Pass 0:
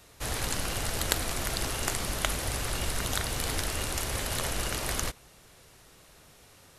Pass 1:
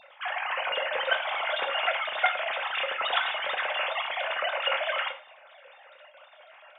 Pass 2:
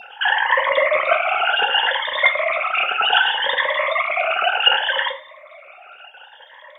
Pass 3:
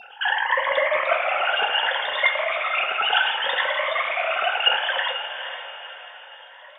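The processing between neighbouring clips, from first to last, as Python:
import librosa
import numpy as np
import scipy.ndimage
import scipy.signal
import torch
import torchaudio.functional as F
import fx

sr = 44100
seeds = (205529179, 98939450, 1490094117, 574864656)

y1 = fx.sine_speech(x, sr)
y1 = fx.rev_gated(y1, sr, seeds[0], gate_ms=140, shape='falling', drr_db=4.0)
y2 = fx.spec_ripple(y1, sr, per_octave=1.1, drift_hz=0.66, depth_db=22)
y2 = fx.rider(y2, sr, range_db=10, speed_s=2.0)
y2 = y2 * 10.0 ** (5.0 / 20.0)
y3 = fx.echo_diffused(y2, sr, ms=467, feedback_pct=44, wet_db=-8.5)
y3 = y3 * 10.0 ** (-4.5 / 20.0)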